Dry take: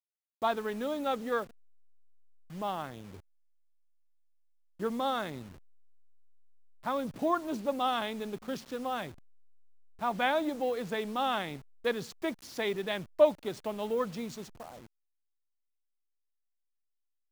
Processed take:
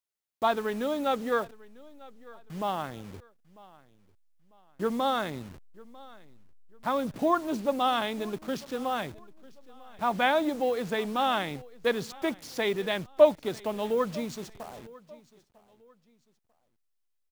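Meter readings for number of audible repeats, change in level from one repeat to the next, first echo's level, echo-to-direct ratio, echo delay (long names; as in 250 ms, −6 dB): 2, −9.5 dB, −22.0 dB, −21.5 dB, 947 ms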